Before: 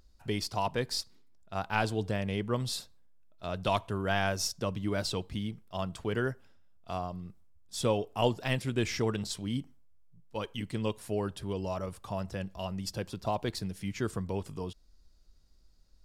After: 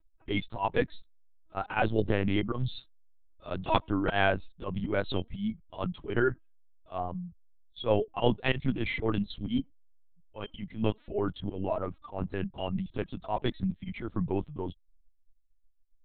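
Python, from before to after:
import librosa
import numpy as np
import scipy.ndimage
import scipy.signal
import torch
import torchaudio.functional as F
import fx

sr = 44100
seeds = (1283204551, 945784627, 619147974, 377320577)

y = fx.bin_expand(x, sr, power=1.5)
y = fx.auto_swell(y, sr, attack_ms=111.0)
y = fx.lpc_vocoder(y, sr, seeds[0], excitation='pitch_kept', order=8)
y = F.gain(torch.from_numpy(y), 8.0).numpy()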